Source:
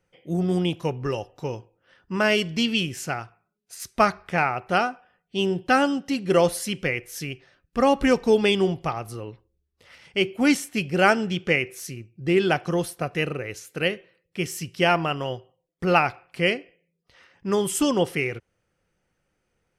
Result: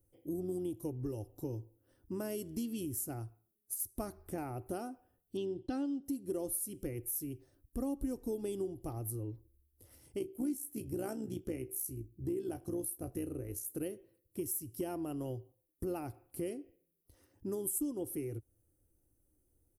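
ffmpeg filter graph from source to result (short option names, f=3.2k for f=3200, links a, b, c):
-filter_complex "[0:a]asettb=1/sr,asplit=3[a][b][c];[a]atrim=end=5.374[d];[b]atrim=start=5.37:end=6.03,asetpts=PTS-STARTPTS,afade=t=in:d=0.004:c=qsin,afade=t=out:st=0.656:d=0.004:c=qsin,agate=range=-33dB:threshold=-46dB:ratio=3:release=100:detection=peak,lowpass=f=3.9k:t=q:w=3.2[e];[c]atrim=start=6.026[f];[d][e]acrossfade=d=0.004:c1=hsin:c2=qsin[g];[g][f]acrossfade=d=0.004:c1=qsin:c2=hsin,asettb=1/sr,asplit=3[h][i][j];[h]atrim=end=10.194[k];[i]atrim=start=10.19:end=13.7,asetpts=PTS-STARTPTS,afade=t=in:d=0.004:c=qsin,afade=t=out:st=3.506:d=0.004:c=qsin,tremolo=f=61:d=0.571,asplit=2[l][m];[m]adelay=23,volume=-12.5dB[n];[l][n]amix=inputs=2:normalize=0,atrim=end_sample=154791[o];[j]atrim=start=13.696[p];[k][o]acrossfade=d=0.004:c1=hsin:c2=qsin[q];[q][p]acrossfade=d=0.004:c1=qsin:c2=hsin,firequalizer=gain_entry='entry(110,0);entry(160,-18);entry(300,1);entry(440,-12);entry(1200,-24);entry(2300,-30);entry(11000,10)':delay=0.05:min_phase=1,acompressor=threshold=-40dB:ratio=4,volume=3.5dB"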